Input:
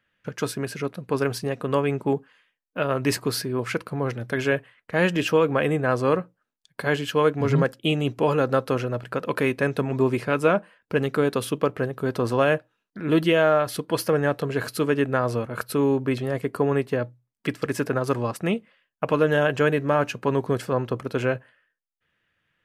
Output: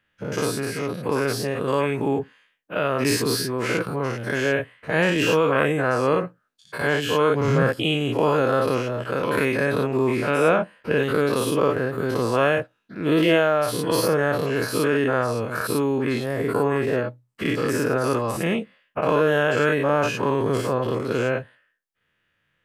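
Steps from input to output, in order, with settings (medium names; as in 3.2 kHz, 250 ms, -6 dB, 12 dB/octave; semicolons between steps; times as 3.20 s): every event in the spectrogram widened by 120 ms; trim -3 dB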